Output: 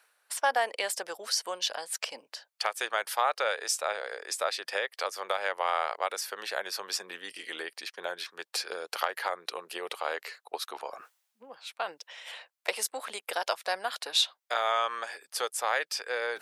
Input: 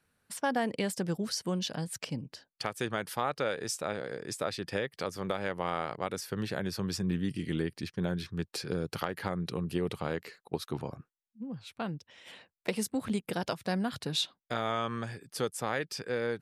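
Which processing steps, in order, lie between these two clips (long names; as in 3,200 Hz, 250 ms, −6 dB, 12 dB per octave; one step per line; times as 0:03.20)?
high-pass filter 590 Hz 24 dB per octave
reversed playback
upward compression, threshold −44 dBFS
reversed playback
level +6 dB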